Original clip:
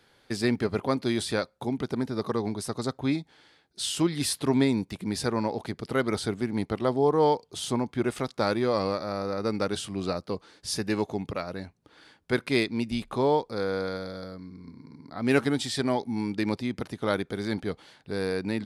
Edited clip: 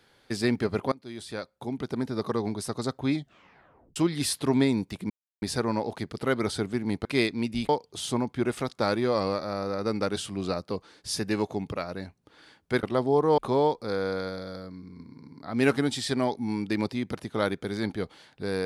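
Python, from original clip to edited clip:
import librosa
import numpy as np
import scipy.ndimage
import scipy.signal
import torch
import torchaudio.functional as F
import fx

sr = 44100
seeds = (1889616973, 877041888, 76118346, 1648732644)

y = fx.edit(x, sr, fx.fade_in_from(start_s=0.92, length_s=1.2, floor_db=-23.5),
    fx.tape_stop(start_s=3.14, length_s=0.82),
    fx.insert_silence(at_s=5.1, length_s=0.32),
    fx.swap(start_s=6.73, length_s=0.55, other_s=12.42, other_length_s=0.64), tone=tone)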